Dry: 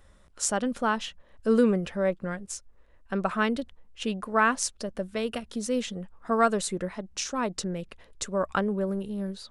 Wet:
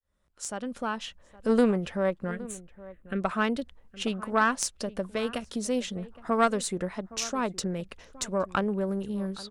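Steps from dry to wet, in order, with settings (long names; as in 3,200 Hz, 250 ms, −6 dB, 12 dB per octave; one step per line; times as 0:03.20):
fade in at the beginning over 1.63 s
in parallel at +2 dB: downward compressor, threshold −35 dBFS, peak gain reduction 17.5 dB
on the sum: harmonic generator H 3 −18 dB, 4 −21 dB, 6 −33 dB, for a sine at −6 dBFS
0:02.31–0:03.22: phaser with its sweep stopped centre 2,200 Hz, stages 4
slap from a distant wall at 140 metres, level −18 dB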